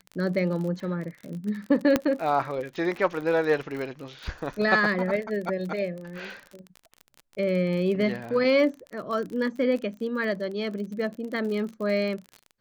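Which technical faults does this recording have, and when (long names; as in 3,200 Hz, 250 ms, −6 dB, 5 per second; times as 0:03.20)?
surface crackle 40 per second −33 dBFS
0:01.96: click −7 dBFS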